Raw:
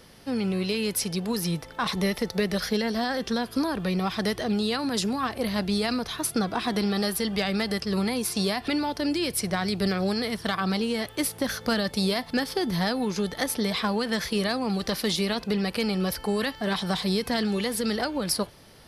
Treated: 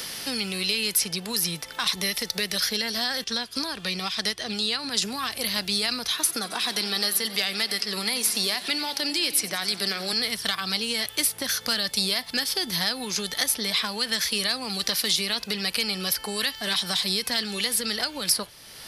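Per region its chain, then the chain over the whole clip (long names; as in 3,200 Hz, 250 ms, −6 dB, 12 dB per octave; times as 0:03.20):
0:03.24–0:05.02: low-pass filter 8,700 Hz + expander for the loud parts, over −40 dBFS
0:06.12–0:10.13: high-pass filter 210 Hz + feedback echo with a swinging delay time 90 ms, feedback 69%, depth 101 cents, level −16.5 dB
whole clip: tilt shelving filter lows −9.5 dB, about 1,500 Hz; multiband upward and downward compressor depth 70%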